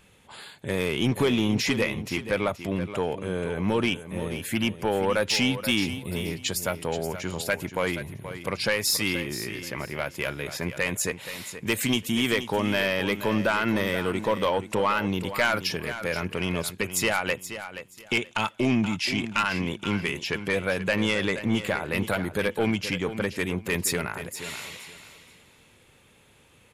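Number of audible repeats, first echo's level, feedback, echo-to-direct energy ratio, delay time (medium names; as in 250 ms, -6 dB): 2, -11.5 dB, 22%, -11.5 dB, 477 ms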